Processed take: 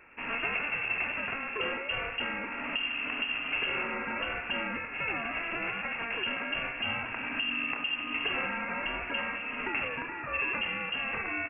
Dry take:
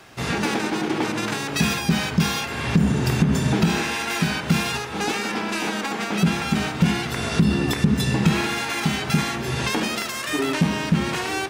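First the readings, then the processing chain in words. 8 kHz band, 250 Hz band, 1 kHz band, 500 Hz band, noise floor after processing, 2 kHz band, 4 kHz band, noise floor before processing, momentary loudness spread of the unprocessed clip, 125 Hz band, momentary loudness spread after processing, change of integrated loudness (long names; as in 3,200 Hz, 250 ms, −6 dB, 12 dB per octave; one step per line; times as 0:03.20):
below −40 dB, −20.5 dB, −9.5 dB, −12.0 dB, −39 dBFS, −3.5 dB, −8.5 dB, −30 dBFS, 5 LU, −28.0 dB, 4 LU, −9.0 dB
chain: high-pass filter 240 Hz 24 dB per octave
far-end echo of a speakerphone 100 ms, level −11 dB
voice inversion scrambler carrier 3,000 Hz
level −7.5 dB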